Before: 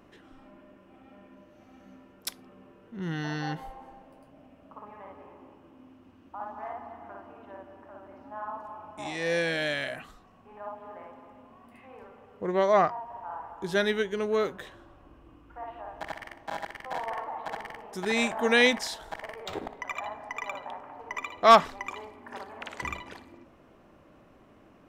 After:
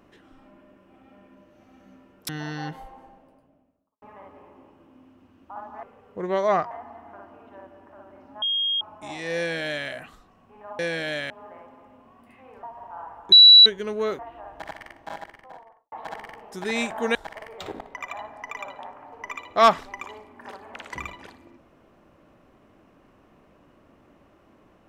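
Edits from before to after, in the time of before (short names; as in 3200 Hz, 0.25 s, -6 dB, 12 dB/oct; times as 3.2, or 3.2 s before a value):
2.29–3.13 cut
3.74–4.86 studio fade out
8.38–8.77 bleep 3250 Hz -21.5 dBFS
9.33–9.84 copy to 10.75
12.08–12.96 move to 6.67
13.65–13.99 bleep 3930 Hz -6.5 dBFS
14.52–15.6 cut
16.37–17.33 studio fade out
18.56–19.02 cut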